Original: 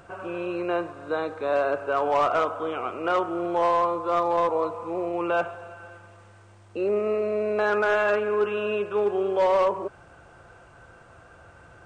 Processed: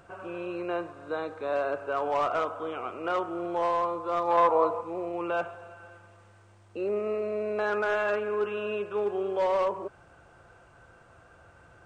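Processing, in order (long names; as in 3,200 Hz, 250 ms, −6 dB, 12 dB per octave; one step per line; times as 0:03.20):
0:04.27–0:04.80: parametric band 1,900 Hz → 610 Hz +9 dB 2.7 octaves
level −5 dB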